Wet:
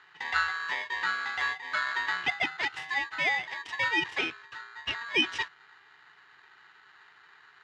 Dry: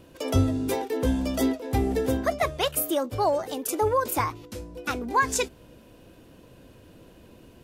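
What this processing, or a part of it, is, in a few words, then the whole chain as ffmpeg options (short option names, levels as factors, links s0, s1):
ring modulator pedal into a guitar cabinet: -af "aeval=exprs='val(0)*sgn(sin(2*PI*1400*n/s))':c=same,highpass=93,equalizer=f=210:t=q:w=4:g=-10,equalizer=f=580:t=q:w=4:g=-8,equalizer=f=1100:t=q:w=4:g=-5,equalizer=f=2000:t=q:w=4:g=4,equalizer=f=2900:t=q:w=4:g=8,equalizer=f=4400:t=q:w=4:g=-7,lowpass=f=4600:w=0.5412,lowpass=f=4600:w=1.3066,volume=0.531"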